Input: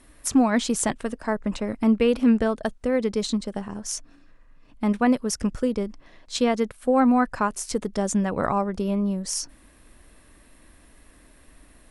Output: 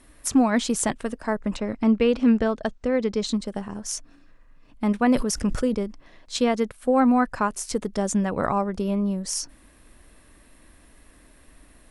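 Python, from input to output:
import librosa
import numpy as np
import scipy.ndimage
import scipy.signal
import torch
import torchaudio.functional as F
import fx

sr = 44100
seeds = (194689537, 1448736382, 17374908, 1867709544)

y = fx.lowpass(x, sr, hz=7200.0, slope=24, at=(1.57, 3.27))
y = fx.sustainer(y, sr, db_per_s=56.0, at=(5.0, 5.75))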